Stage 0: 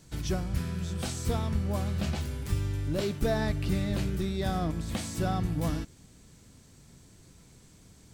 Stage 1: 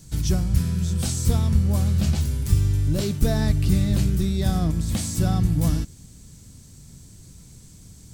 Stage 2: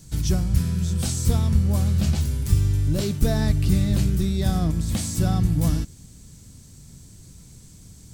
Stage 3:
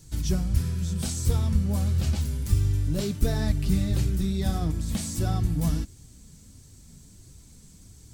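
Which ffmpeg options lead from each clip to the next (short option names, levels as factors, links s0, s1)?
-af "bass=f=250:g=11,treble=f=4000:g=11"
-af anull
-af "flanger=delay=2.1:depth=2.9:regen=-39:speed=1.5:shape=triangular"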